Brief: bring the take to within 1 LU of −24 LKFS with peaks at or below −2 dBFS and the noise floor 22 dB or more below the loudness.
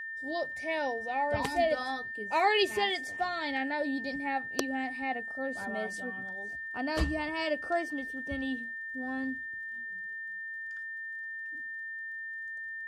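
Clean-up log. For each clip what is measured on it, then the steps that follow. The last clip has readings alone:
crackle rate 25 per second; interfering tone 1,800 Hz; level of the tone −37 dBFS; integrated loudness −33.0 LKFS; sample peak −10.0 dBFS; target loudness −24.0 LKFS
→ click removal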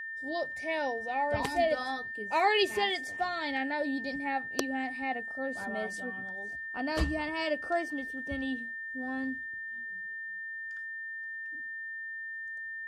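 crackle rate 0 per second; interfering tone 1,800 Hz; level of the tone −37 dBFS
→ notch filter 1,800 Hz, Q 30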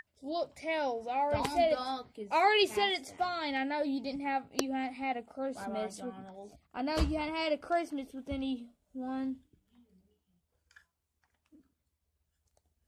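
interfering tone none found; integrated loudness −33.5 LKFS; sample peak −10.0 dBFS; target loudness −24.0 LKFS
→ level +9.5 dB
brickwall limiter −2 dBFS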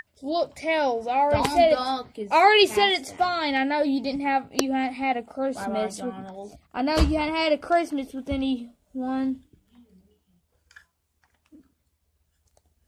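integrated loudness −24.0 LKFS; sample peak −2.0 dBFS; background noise floor −73 dBFS

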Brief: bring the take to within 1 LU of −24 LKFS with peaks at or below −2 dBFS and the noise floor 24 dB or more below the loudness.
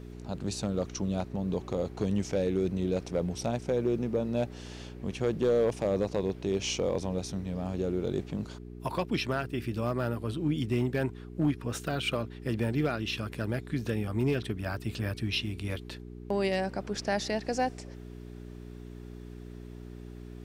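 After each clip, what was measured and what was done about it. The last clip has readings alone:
share of clipped samples 0.4%; peaks flattened at −19.5 dBFS; mains hum 60 Hz; hum harmonics up to 420 Hz; level of the hum −41 dBFS; integrated loudness −31.5 LKFS; sample peak −19.5 dBFS; target loudness −24.0 LKFS
→ clipped peaks rebuilt −19.5 dBFS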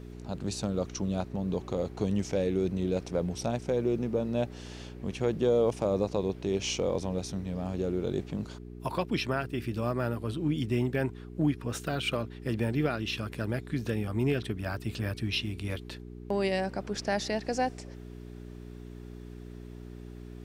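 share of clipped samples 0.0%; mains hum 60 Hz; hum harmonics up to 420 Hz; level of the hum −41 dBFS
→ hum removal 60 Hz, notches 7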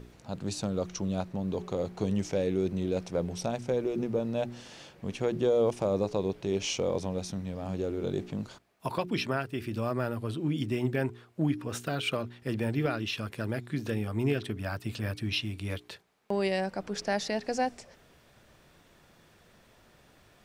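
mains hum none found; integrated loudness −32.0 LKFS; sample peak −14.5 dBFS; target loudness −24.0 LKFS
→ level +8 dB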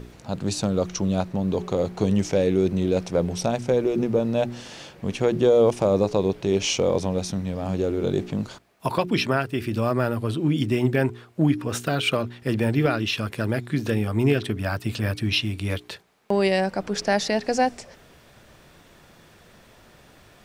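integrated loudness −24.0 LKFS; sample peak −6.5 dBFS; background noise floor −53 dBFS

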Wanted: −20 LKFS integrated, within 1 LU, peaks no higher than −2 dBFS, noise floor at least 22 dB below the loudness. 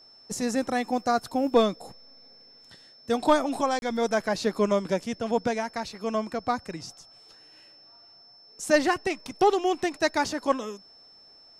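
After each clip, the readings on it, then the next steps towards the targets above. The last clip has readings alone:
number of dropouts 1; longest dropout 31 ms; interfering tone 5,300 Hz; level of the tone −51 dBFS; integrated loudness −26.5 LKFS; sample peak −10.0 dBFS; target loudness −20.0 LKFS
→ repair the gap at 0:03.79, 31 ms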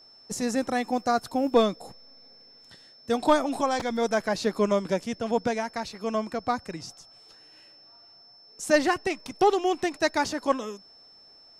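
number of dropouts 0; interfering tone 5,300 Hz; level of the tone −51 dBFS
→ notch filter 5,300 Hz, Q 30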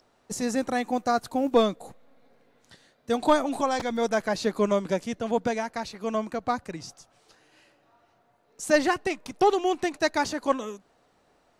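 interfering tone none found; integrated loudness −26.5 LKFS; sample peak −10.0 dBFS; target loudness −20.0 LKFS
→ level +6.5 dB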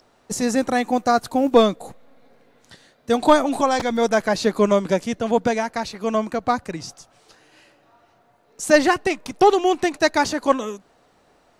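integrated loudness −20.0 LKFS; sample peak −3.5 dBFS; background noise floor −59 dBFS

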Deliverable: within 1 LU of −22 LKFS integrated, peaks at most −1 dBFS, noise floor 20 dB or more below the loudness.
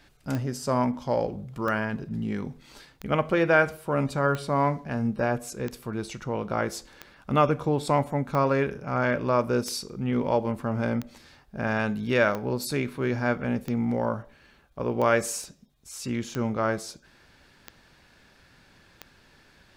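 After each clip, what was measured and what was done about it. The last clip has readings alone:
number of clicks 15; integrated loudness −27.0 LKFS; sample peak −8.0 dBFS; target loudness −22.0 LKFS
→ click removal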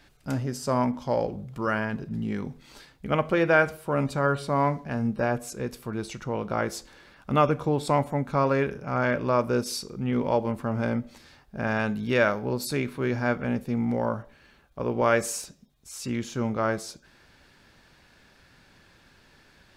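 number of clicks 0; integrated loudness −27.0 LKFS; sample peak −8.0 dBFS; target loudness −22.0 LKFS
→ level +5 dB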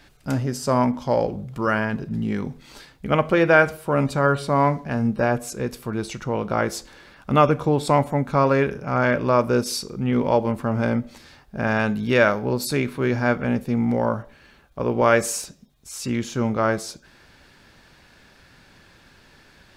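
integrated loudness −22.0 LKFS; sample peak −3.0 dBFS; background noise floor −54 dBFS

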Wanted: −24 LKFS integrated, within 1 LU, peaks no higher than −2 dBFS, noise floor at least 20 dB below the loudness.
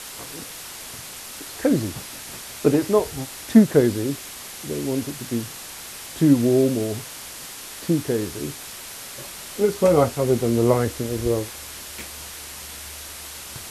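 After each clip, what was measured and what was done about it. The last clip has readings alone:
background noise floor −38 dBFS; target noise floor −42 dBFS; integrated loudness −22.0 LKFS; sample peak −2.0 dBFS; target loudness −24.0 LKFS
→ broadband denoise 6 dB, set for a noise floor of −38 dBFS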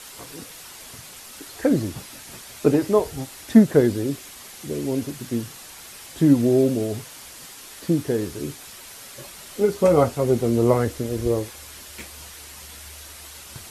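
background noise floor −42 dBFS; integrated loudness −21.5 LKFS; sample peak −2.0 dBFS; target loudness −24.0 LKFS
→ level −2.5 dB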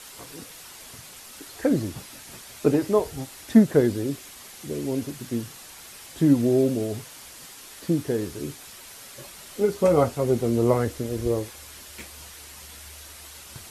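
integrated loudness −24.0 LKFS; sample peak −4.5 dBFS; background noise floor −45 dBFS

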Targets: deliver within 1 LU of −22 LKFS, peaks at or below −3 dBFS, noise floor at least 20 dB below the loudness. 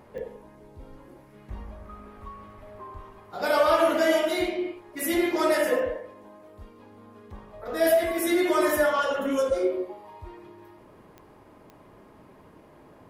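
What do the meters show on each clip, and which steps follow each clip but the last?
number of clicks 4; integrated loudness −24.5 LKFS; sample peak −10.0 dBFS; target loudness −22.0 LKFS
→ click removal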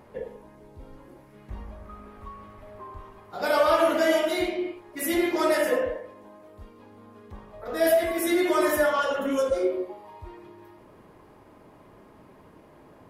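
number of clicks 0; integrated loudness −24.5 LKFS; sample peak −10.0 dBFS; target loudness −22.0 LKFS
→ level +2.5 dB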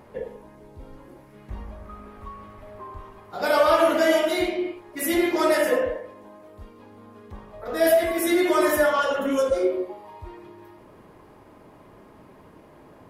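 integrated loudness −22.0 LKFS; sample peak −7.5 dBFS; background noise floor −50 dBFS

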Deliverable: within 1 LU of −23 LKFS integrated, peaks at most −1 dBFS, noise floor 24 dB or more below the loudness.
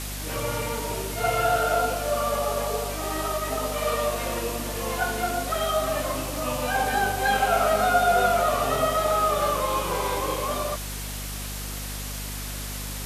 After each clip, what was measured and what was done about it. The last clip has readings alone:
mains hum 50 Hz; hum harmonics up to 250 Hz; level of the hum −33 dBFS; background noise floor −33 dBFS; target noise floor −50 dBFS; integrated loudness −25.5 LKFS; sample peak −9.5 dBFS; target loudness −23.0 LKFS
→ mains-hum notches 50/100/150/200/250 Hz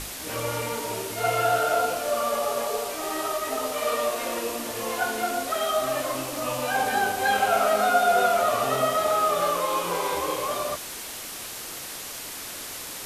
mains hum none found; background noise floor −37 dBFS; target noise floor −50 dBFS
→ broadband denoise 13 dB, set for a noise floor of −37 dBFS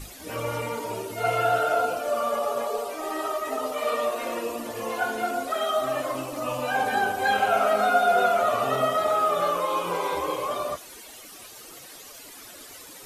background noise floor −45 dBFS; target noise floor −50 dBFS
→ broadband denoise 6 dB, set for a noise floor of −45 dBFS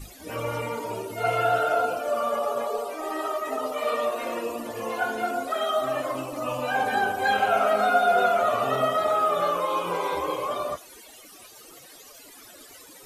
background noise floor −48 dBFS; target noise floor −50 dBFS
→ broadband denoise 6 dB, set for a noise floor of −48 dBFS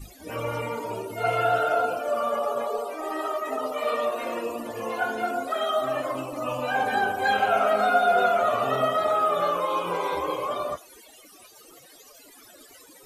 background noise floor −51 dBFS; integrated loudness −25.5 LKFS; sample peak −10.0 dBFS; target loudness −23.0 LKFS
→ level +2.5 dB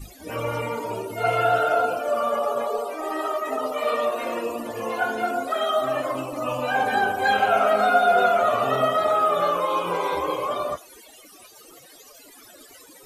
integrated loudness −23.0 LKFS; sample peak −7.5 dBFS; background noise floor −49 dBFS

